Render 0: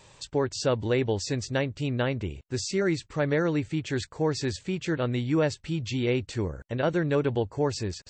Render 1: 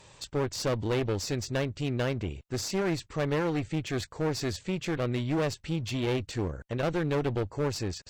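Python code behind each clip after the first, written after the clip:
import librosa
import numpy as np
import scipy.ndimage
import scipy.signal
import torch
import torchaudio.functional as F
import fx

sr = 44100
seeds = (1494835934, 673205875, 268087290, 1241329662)

y = fx.clip_asym(x, sr, top_db=-34.0, bottom_db=-19.0)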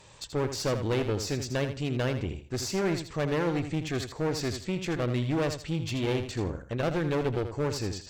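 y = fx.echo_feedback(x, sr, ms=81, feedback_pct=20, wet_db=-9)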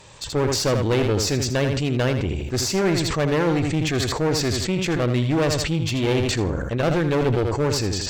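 y = fx.sustainer(x, sr, db_per_s=28.0)
y = F.gain(torch.from_numpy(y), 7.0).numpy()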